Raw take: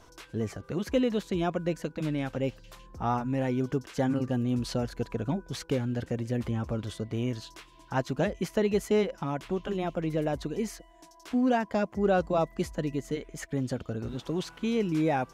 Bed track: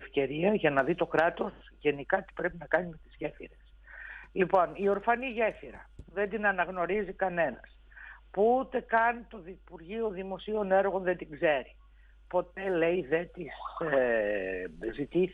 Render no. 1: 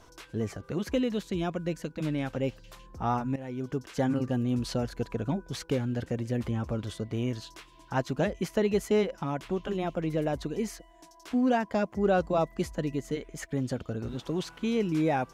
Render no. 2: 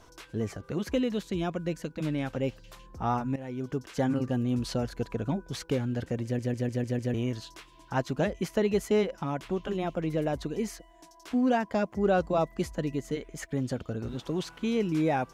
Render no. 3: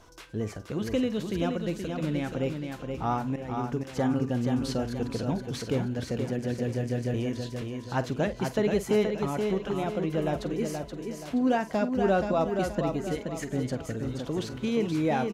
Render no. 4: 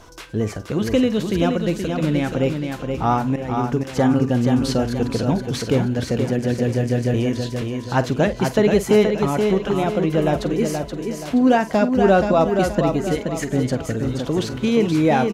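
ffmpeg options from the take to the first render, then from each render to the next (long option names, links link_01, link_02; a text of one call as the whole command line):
ffmpeg -i in.wav -filter_complex "[0:a]asettb=1/sr,asplit=3[link_01][link_02][link_03];[link_01]atrim=end=0.954[link_04];[link_02]atrim=start=0.95:end=1.99,asetpts=PTS-STARTPTS,afade=type=in:duration=0.004:curve=qsin,afade=type=out:start_time=1.036:duration=0.004:curve=qsin,equalizer=frequency=760:width=0.51:gain=-4[link_05];[link_03]atrim=start=1.986[link_06];[link_04][link_05]acrossfade=duration=0.004:curve1=hsin:curve2=qsin[link_07];[link_07][link_06]acrossfade=duration=0.004:curve1=qsin:curve2=hsin,asplit=2[link_08][link_09];[link_08]atrim=end=3.36,asetpts=PTS-STARTPTS,afade=type=out:start_time=3.356:duration=0.004:curve=hsin:silence=0.177828[link_10];[link_09]atrim=start=3.36,asetpts=PTS-STARTPTS,afade=type=in:duration=0.58:silence=0.177828[link_11];[link_10][link_11]concat=n=2:v=0:a=1" out.wav
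ffmpeg -i in.wav -filter_complex "[0:a]asplit=7[link_01][link_02][link_03][link_04][link_05][link_06][link_07];[link_01]atrim=end=6.392[link_08];[link_02]atrim=start=6.238:end=6.392[link_09];[link_03]atrim=start=6.238:end=6.392[link_10];[link_04]atrim=start=6.238:end=6.392[link_11];[link_05]atrim=start=6.238:end=6.392[link_12];[link_06]atrim=start=6.238:end=6.392[link_13];[link_07]atrim=start=7.138[link_14];[link_08][link_09]acrossfade=duration=0.004:curve1=hsin:curve2=hsin[link_15];[link_15][link_10]acrossfade=duration=0.004:curve1=hsin:curve2=hsin[link_16];[link_16][link_11]acrossfade=duration=0.004:curve1=hsin:curve2=hsin[link_17];[link_17][link_12]acrossfade=duration=0.004:curve1=hsin:curve2=hsin[link_18];[link_18][link_13]acrossfade=duration=0.004:curve1=hsin:curve2=hsin[link_19];[link_19][link_14]acrossfade=duration=0.004:curve1=hsin:curve2=hsin" out.wav
ffmpeg -i in.wav -filter_complex "[0:a]asplit=2[link_01][link_02];[link_02]adelay=47,volume=-14dB[link_03];[link_01][link_03]amix=inputs=2:normalize=0,aecho=1:1:476|952|1428|1904|2380:0.531|0.212|0.0849|0.034|0.0136" out.wav
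ffmpeg -i in.wav -af "volume=9.5dB" out.wav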